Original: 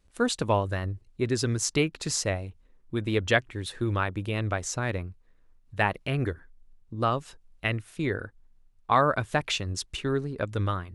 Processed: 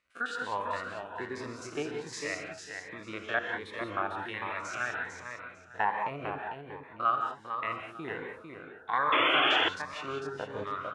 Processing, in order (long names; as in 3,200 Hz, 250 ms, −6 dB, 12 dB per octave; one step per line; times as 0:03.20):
spectrum averaged block by block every 50 ms
in parallel at −1 dB: downward compressor, threshold −35 dBFS, peak gain reduction 16 dB
on the sum: reverb whose tail is shaped and stops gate 210 ms rising, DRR 3 dB
auto-filter band-pass saw down 0.47 Hz 830–1,800 Hz
on a send: repeating echo 450 ms, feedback 21%, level −6 dB
on the sum: sound drawn into the spectrogram noise, 0:09.12–0:09.69, 260–3,500 Hz −28 dBFS
phaser whose notches keep moving one way rising 1.3 Hz
level +4 dB